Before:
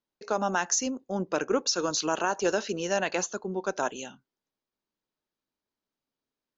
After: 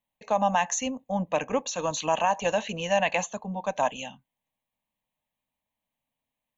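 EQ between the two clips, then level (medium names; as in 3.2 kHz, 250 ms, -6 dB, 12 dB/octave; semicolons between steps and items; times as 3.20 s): static phaser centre 1.4 kHz, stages 6; +6.5 dB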